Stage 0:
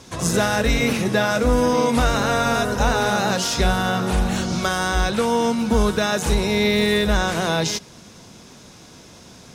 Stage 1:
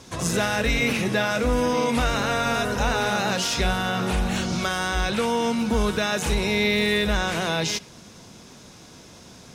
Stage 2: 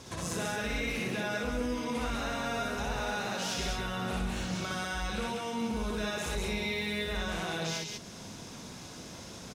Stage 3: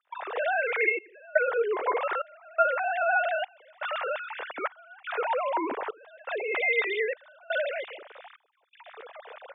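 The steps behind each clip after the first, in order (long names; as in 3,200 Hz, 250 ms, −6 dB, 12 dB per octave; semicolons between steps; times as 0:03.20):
dynamic equaliser 2,500 Hz, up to +6 dB, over −38 dBFS, Q 1.4; in parallel at +0.5 dB: brickwall limiter −16 dBFS, peak gain reduction 10 dB; on the sum: level −8 dB
downward compressor 2.5 to 1, threshold −37 dBFS, peak gain reduction 12.5 dB; loudspeakers that aren't time-aligned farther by 21 metres −1 dB, 67 metres −2 dB; level −3 dB
three sine waves on the formant tracks; gate pattern ".xxxxxxx.." 122 BPM −24 dB; band-pass filter 450–2,200 Hz; level +7.5 dB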